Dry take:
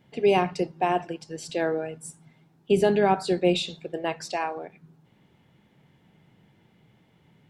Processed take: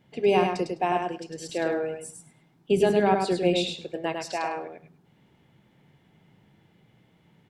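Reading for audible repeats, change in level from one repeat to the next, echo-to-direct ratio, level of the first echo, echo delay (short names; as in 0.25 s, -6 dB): 2, -16.5 dB, -4.5 dB, -4.5 dB, 0.103 s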